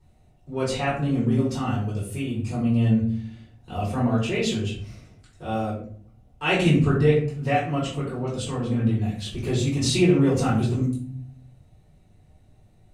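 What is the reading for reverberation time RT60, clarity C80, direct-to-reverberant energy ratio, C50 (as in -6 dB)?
0.55 s, 8.0 dB, -10.0 dB, 4.0 dB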